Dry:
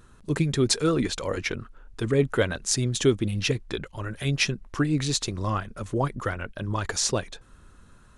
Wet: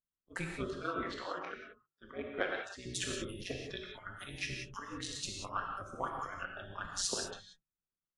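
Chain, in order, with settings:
noise gate −43 dBFS, range −18 dB
mains-hum notches 50/100/150/200/250/300/350/400/450 Hz
noise reduction from a noise print of the clip's start 19 dB
dynamic equaliser 1,500 Hz, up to +6 dB, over −44 dBFS, Q 0.93
harmonic and percussive parts rebalanced harmonic −9 dB
volume swells 106 ms
soft clipping −12 dBFS, distortion −26 dB
0:00.63–0:02.86: band-pass filter 270–2,800 Hz
amplitude modulation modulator 190 Hz, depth 75%
reverb whose tail is shaped and stops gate 210 ms flat, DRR 0.5 dB
level −5.5 dB
AAC 64 kbit/s 32,000 Hz

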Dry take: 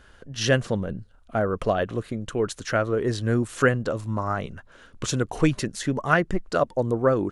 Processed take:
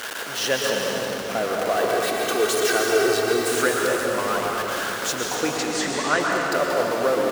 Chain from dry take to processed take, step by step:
converter with a step at zero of −20.5 dBFS
high-pass filter 380 Hz 12 dB per octave
0:01.76–0:03.49: comb filter 2.6 ms, depth 84%
0:05.35–0:06.20: Butterworth low-pass 8,600 Hz
echo with shifted repeats 225 ms, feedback 64%, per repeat −67 Hz, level −22 dB
convolution reverb RT60 3.9 s, pre-delay 111 ms, DRR −1.5 dB
level −3.5 dB

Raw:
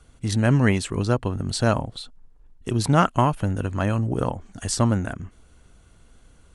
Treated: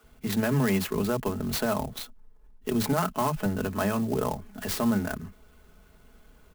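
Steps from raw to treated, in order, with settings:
high-shelf EQ 6,400 Hz −8 dB
comb filter 4.7 ms, depth 66%
multiband delay without the direct sound highs, lows 30 ms, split 190 Hz
brickwall limiter −16 dBFS, peak gain reduction 12 dB
low-shelf EQ 63 Hz −7.5 dB
converter with an unsteady clock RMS 0.041 ms

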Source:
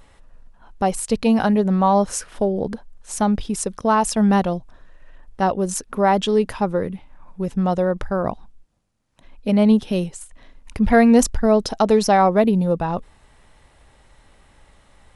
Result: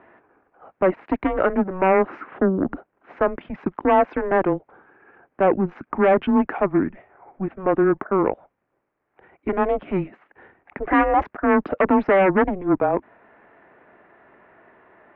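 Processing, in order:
sine wavefolder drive 10 dB, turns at −3 dBFS
single-sideband voice off tune −190 Hz 390–2,300 Hz
level −7.5 dB

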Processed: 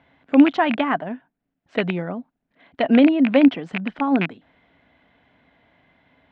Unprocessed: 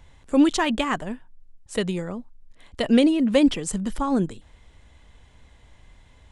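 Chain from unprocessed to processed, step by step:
loose part that buzzes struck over −26 dBFS, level −11 dBFS
dynamic equaliser 830 Hz, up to +5 dB, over −39 dBFS, Q 1.7
speech leveller 2 s
loudspeaker in its box 160–3,500 Hz, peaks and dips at 170 Hz +5 dB, 270 Hz +9 dB, 680 Hz +9 dB, 1,500 Hz +6 dB, 2,100 Hz +4 dB
level −4 dB

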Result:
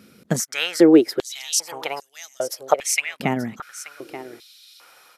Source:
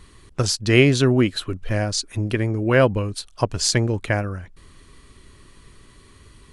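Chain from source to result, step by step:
automatic gain control gain up to 4.5 dB
speed change +26%
dynamic equaliser 3,500 Hz, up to −7 dB, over −40 dBFS, Q 1.9
on a send: single-tap delay 881 ms −13 dB
on the sum: high-pass on a step sequencer 2.5 Hz 210–6,200 Hz
level −2 dB

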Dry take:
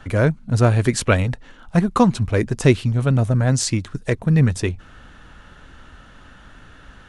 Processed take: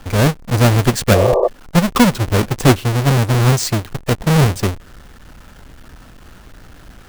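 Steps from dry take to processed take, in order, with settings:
each half-wave held at its own peak
bit reduction 8 bits
healed spectral selection 0:01.16–0:01.45, 350–1,200 Hz before
level −1 dB

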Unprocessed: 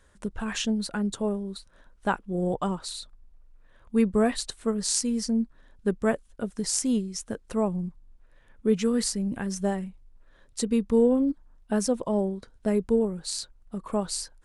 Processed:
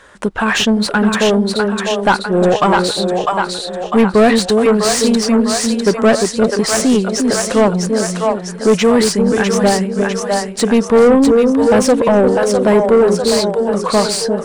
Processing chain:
echo with a time of its own for lows and highs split 500 Hz, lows 349 ms, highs 651 ms, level −5 dB
mid-hump overdrive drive 25 dB, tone 2,300 Hz, clips at −6 dBFS
level +5.5 dB

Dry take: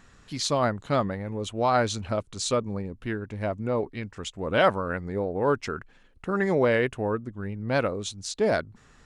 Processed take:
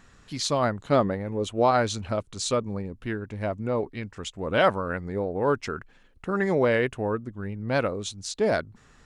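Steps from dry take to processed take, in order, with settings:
0:00.85–0:01.71: dynamic equaliser 400 Hz, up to +6 dB, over −36 dBFS, Q 0.78

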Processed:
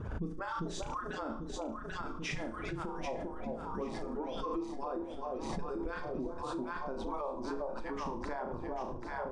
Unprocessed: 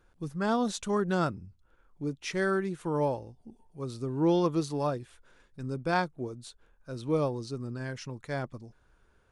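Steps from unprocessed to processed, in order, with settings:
harmonic-percussive split with one part muted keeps percussive
low-pass filter 9,100 Hz 24 dB per octave
spectral tilt −4 dB per octave
notch filter 4,200 Hz, Q 11
delay that swaps between a low-pass and a high-pass 395 ms, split 870 Hz, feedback 71%, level −5 dB
downward compressor 2.5 to 1, threshold −42 dBFS, peak gain reduction 15 dB
parametric band 950 Hz +2.5 dB 0.62 octaves, from 0:06.43 +12 dB
flutter between parallel walls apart 6.1 metres, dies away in 0.35 s
brickwall limiter −32.5 dBFS, peak gain reduction 9 dB
background raised ahead of every attack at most 35 dB per second
level +3.5 dB

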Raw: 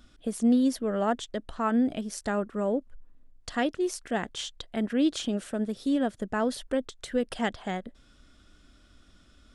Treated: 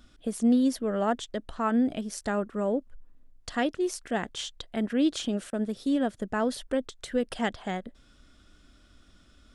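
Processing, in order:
0:05.50–0:06.69: downward expander −40 dBFS

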